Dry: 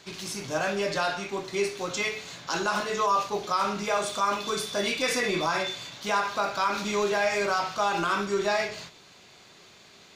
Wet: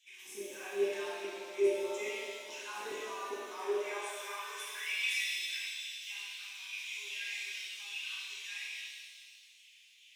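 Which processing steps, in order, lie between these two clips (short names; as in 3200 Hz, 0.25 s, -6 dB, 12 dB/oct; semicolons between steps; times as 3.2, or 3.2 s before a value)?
passive tone stack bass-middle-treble 10-0-1; LFO high-pass saw down 2.4 Hz 330–3500 Hz; fixed phaser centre 910 Hz, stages 8; high-pass sweep 170 Hz -> 2900 Hz, 3.16–5.07; shimmer reverb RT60 1.7 s, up +7 st, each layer -8 dB, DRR -5 dB; gain +8.5 dB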